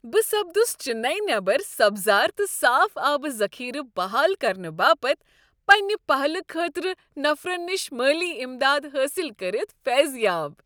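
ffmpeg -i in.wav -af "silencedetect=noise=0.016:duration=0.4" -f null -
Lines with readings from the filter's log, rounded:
silence_start: 5.14
silence_end: 5.69 | silence_duration: 0.54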